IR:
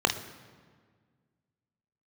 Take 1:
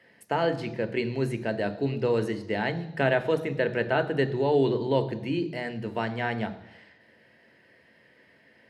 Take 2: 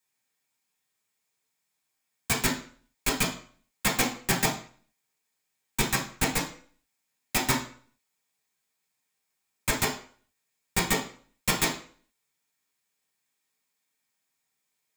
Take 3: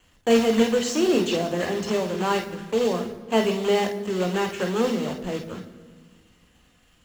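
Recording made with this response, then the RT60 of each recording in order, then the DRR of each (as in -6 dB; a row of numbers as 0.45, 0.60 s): 3; 0.90, 0.50, 1.7 s; 9.0, -4.0, 4.5 dB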